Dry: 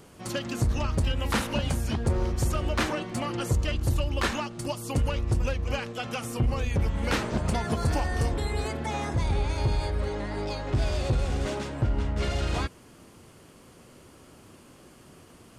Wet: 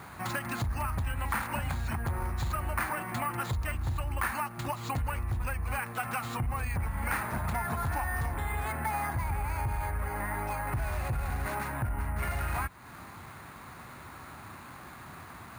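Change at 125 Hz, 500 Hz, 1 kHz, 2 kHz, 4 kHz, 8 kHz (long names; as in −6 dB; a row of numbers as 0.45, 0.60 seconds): −5.5, −9.5, +1.5, +0.5, −11.0, −4.5 decibels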